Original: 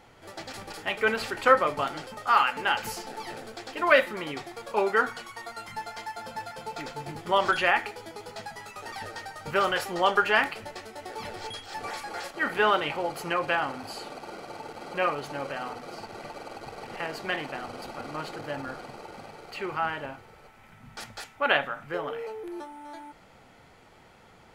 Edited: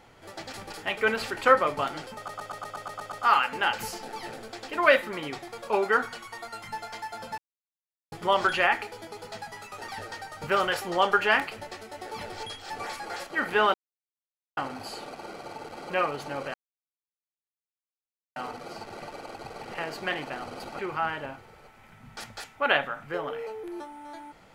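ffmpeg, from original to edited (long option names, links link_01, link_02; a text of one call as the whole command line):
ffmpeg -i in.wav -filter_complex "[0:a]asplit=15[link_01][link_02][link_03][link_04][link_05][link_06][link_07][link_08][link_09][link_10][link_11][link_12][link_13][link_14][link_15];[link_01]atrim=end=2.282[link_16];[link_02]atrim=start=2.158:end=2.282[link_17];[link_03]atrim=start=2.158:end=2.282[link_18];[link_04]atrim=start=2.158:end=2.282[link_19];[link_05]atrim=start=2.158:end=2.282[link_20];[link_06]atrim=start=2.158:end=2.282[link_21];[link_07]atrim=start=2.158:end=2.282[link_22];[link_08]atrim=start=2.158:end=2.282[link_23];[link_09]atrim=start=2.158:end=6.42,asetpts=PTS-STARTPTS,afade=type=out:start_time=4.258:duration=0.004:curve=hsin[link_24];[link_10]atrim=start=6.42:end=7.16,asetpts=PTS-STARTPTS,volume=0[link_25];[link_11]atrim=start=7.16:end=12.78,asetpts=PTS-STARTPTS,afade=type=in:duration=0.004:curve=hsin,afade=type=out:start_time=5.616:duration=0.004:curve=hsin[link_26];[link_12]atrim=start=12.78:end=13.61,asetpts=PTS-STARTPTS,volume=0[link_27];[link_13]atrim=start=13.61:end=15.58,asetpts=PTS-STARTPTS,afade=type=in:duration=0.004:curve=hsin,afade=type=out:start_time=1.966:duration=0.004:curve=hsin,apad=pad_dur=1.82[link_28];[link_14]atrim=start=15.58:end=18.012,asetpts=PTS-STARTPTS,afade=type=in:duration=0.004:curve=hsin[link_29];[link_15]atrim=start=19.588[link_30];[link_16][link_17]acrossfade=duration=0.004:curve1=hsin:curve2=hsin[link_31];[link_31][link_18]acrossfade=duration=0.004:curve1=hsin:curve2=hsin[link_32];[link_32][link_19]acrossfade=duration=0.004:curve1=hsin:curve2=hsin[link_33];[link_33][link_20]acrossfade=duration=0.004:curve1=hsin:curve2=hsin[link_34];[link_34][link_21]acrossfade=duration=0.004:curve1=hsin:curve2=hsin[link_35];[link_35][link_22]acrossfade=duration=0.004:curve1=hsin:curve2=hsin[link_36];[link_36][link_23]acrossfade=duration=0.004:curve1=hsin:curve2=hsin[link_37];[link_24][link_25][link_26][link_27][link_28][link_29]concat=n=6:v=0:a=1[link_38];[link_37][link_38]acrossfade=duration=0.004:curve1=hsin:curve2=hsin[link_39];[link_39][link_30]acrossfade=duration=0.004:curve1=hsin:curve2=hsin" out.wav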